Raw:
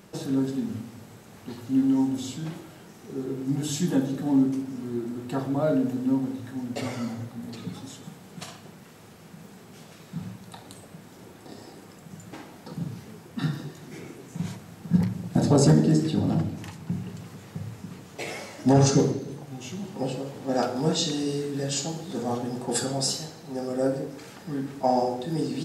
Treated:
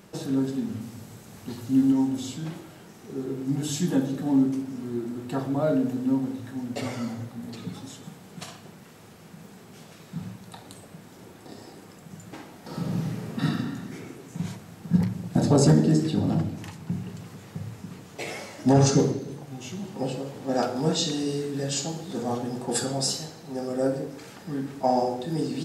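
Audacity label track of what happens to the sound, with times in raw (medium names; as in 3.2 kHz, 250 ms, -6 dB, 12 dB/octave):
0.810000	1.920000	tone controls bass +4 dB, treble +5 dB
12.600000	13.440000	reverb throw, RT60 1.7 s, DRR -6 dB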